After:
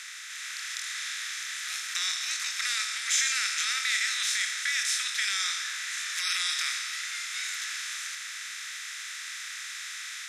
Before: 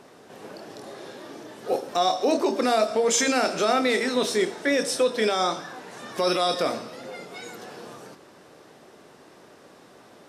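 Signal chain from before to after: spectral levelling over time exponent 0.4; steep high-pass 1.6 kHz 36 dB/octave; level rider gain up to 3.5 dB; trim -8 dB

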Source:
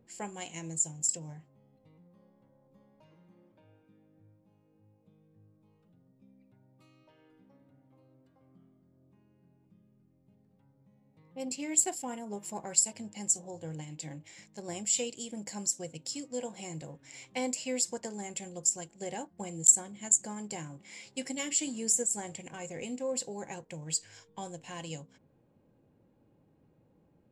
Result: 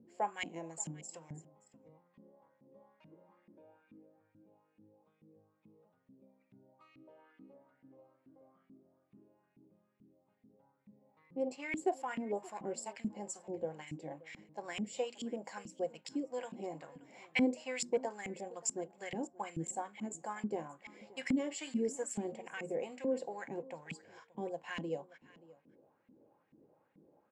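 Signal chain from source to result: hum notches 60/120/180/240 Hz; LFO band-pass saw up 2.3 Hz 220–2400 Hz; on a send: delay 577 ms -21 dB; on the sum: trim +9 dB

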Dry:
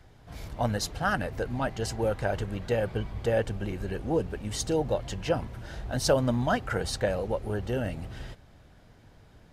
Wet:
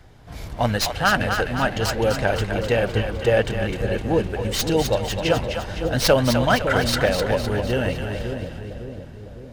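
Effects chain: tracing distortion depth 0.084 ms; dynamic bell 2.8 kHz, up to +7 dB, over -48 dBFS, Q 0.75; two-band feedback delay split 550 Hz, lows 557 ms, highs 255 ms, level -6 dB; trim +6 dB

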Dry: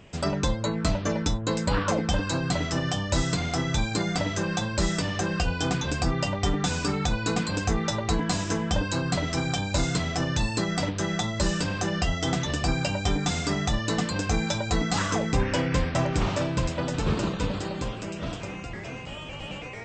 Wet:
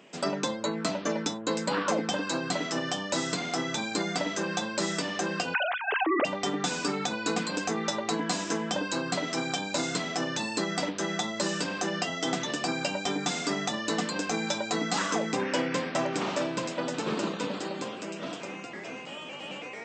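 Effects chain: 5.54–6.25 s: formants replaced by sine waves; high-pass 210 Hz 24 dB/octave; trim -1 dB

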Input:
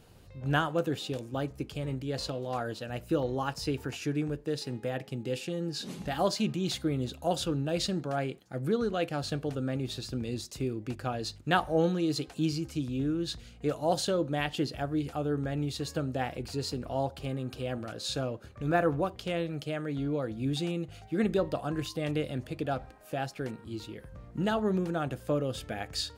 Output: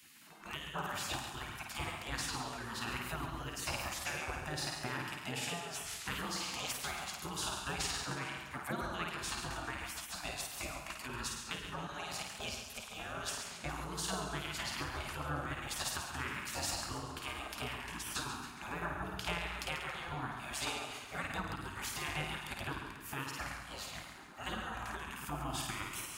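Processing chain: graphic EQ 125/250/500/1000/4000 Hz -11/-12/+8/+7/-6 dB; 11.43–12.92 s: level held to a coarse grid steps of 12 dB; on a send: flutter echo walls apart 9 m, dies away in 0.62 s; on the sum: compression 5:1, threshold -30 dBFS, peak gain reduction 13.5 dB; in parallel at +0.5 dB: peak limiter -26 dBFS, peak gain reduction 8 dB; on the sum: spectral gate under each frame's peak -20 dB weak; high-pass 86 Hz 6 dB/octave; bass shelf 170 Hz +11 dB; modulated delay 138 ms, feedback 50%, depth 64 cents, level -9 dB; trim +1.5 dB

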